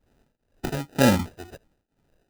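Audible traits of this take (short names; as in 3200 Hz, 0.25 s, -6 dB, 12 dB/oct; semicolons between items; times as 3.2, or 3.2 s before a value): phasing stages 12, 1.2 Hz, lowest notch 170–1400 Hz; aliases and images of a low sample rate 1100 Hz, jitter 0%; tremolo triangle 2 Hz, depth 95%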